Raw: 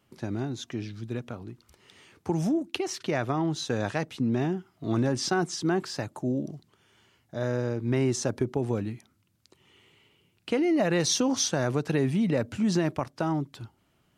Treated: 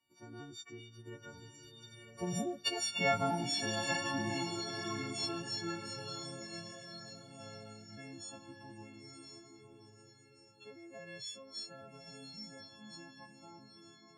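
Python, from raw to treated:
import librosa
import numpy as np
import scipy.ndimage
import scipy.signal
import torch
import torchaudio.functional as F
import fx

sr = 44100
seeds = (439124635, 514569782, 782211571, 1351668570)

p1 = fx.freq_snap(x, sr, grid_st=4)
p2 = fx.doppler_pass(p1, sr, speed_mps=11, closest_m=7.2, pass_at_s=2.91)
p3 = scipy.signal.sosfilt(scipy.signal.butter(2, 7600.0, 'lowpass', fs=sr, output='sos'), p2)
p4 = fx.low_shelf(p3, sr, hz=120.0, db=-5.5)
p5 = p4 + fx.echo_diffused(p4, sr, ms=984, feedback_pct=40, wet_db=-5.5, dry=0)
y = fx.comb_cascade(p5, sr, direction='rising', hz=0.22)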